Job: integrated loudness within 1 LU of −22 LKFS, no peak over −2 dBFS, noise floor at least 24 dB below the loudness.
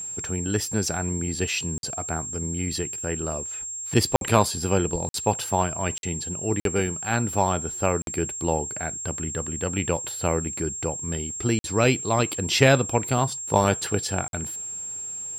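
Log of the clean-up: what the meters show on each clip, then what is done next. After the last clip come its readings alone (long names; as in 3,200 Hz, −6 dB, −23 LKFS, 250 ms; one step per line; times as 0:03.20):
number of dropouts 8; longest dropout 52 ms; interfering tone 7,500 Hz; level of the tone −31 dBFS; integrated loudness −25.0 LKFS; sample peak −3.5 dBFS; target loudness −22.0 LKFS
→ repair the gap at 0:01.78/0:04.16/0:05.09/0:05.98/0:06.60/0:08.02/0:11.59/0:14.28, 52 ms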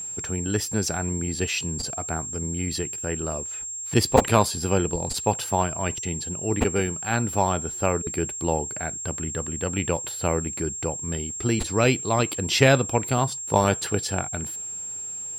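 number of dropouts 0; interfering tone 7,500 Hz; level of the tone −31 dBFS
→ notch filter 7,500 Hz, Q 30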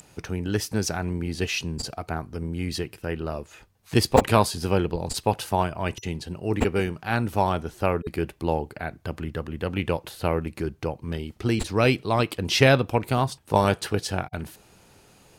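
interfering tone none found; integrated loudness −26.0 LKFS; sample peak −2.0 dBFS; target loudness −22.0 LKFS
→ level +4 dB
brickwall limiter −2 dBFS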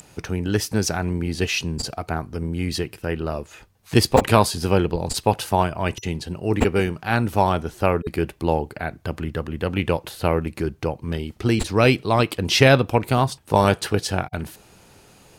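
integrated loudness −22.0 LKFS; sample peak −2.0 dBFS; background noise floor −52 dBFS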